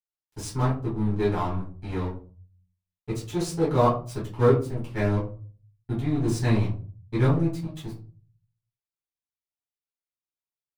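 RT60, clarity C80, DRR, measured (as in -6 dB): 0.40 s, 13.5 dB, -9.0 dB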